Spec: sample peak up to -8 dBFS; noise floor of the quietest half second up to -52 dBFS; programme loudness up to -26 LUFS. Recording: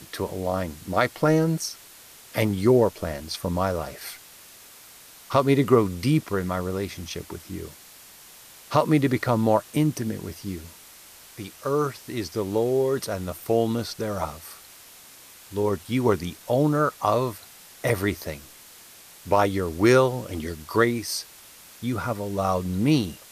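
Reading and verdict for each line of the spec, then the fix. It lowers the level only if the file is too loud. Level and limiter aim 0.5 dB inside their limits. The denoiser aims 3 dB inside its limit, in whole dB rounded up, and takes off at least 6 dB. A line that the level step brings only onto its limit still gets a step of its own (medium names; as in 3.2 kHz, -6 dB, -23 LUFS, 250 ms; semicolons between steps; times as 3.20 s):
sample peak -6.0 dBFS: fail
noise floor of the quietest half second -48 dBFS: fail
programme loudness -24.5 LUFS: fail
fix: noise reduction 6 dB, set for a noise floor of -48 dBFS; trim -2 dB; peak limiter -8.5 dBFS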